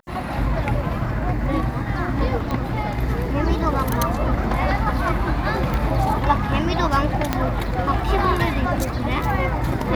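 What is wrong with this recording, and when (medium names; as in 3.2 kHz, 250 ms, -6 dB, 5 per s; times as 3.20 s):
2.51 s: pop -14 dBFS
5.74 s: pop -12 dBFS
7.33 s: pop -5 dBFS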